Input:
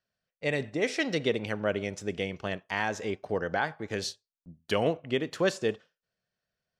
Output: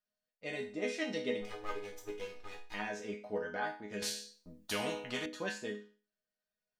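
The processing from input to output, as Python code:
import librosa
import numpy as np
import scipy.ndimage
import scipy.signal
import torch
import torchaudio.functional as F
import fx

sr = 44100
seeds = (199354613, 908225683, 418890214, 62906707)

y = fx.lower_of_two(x, sr, delay_ms=2.4, at=(1.41, 2.74))
y = fx.resonator_bank(y, sr, root=56, chord='minor', decay_s=0.37)
y = fx.spectral_comp(y, sr, ratio=2.0, at=(4.02, 5.26))
y = F.gain(torch.from_numpy(y), 10.0).numpy()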